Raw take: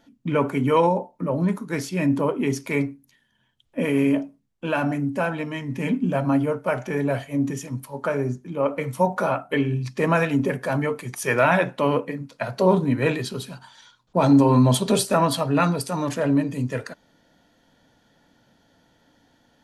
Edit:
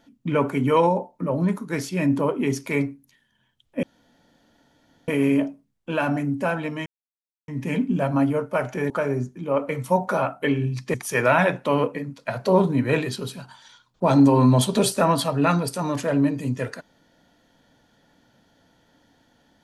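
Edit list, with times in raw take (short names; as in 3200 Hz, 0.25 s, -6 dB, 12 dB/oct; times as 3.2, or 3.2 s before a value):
3.83 insert room tone 1.25 s
5.61 insert silence 0.62 s
7.03–7.99 cut
10.03–11.07 cut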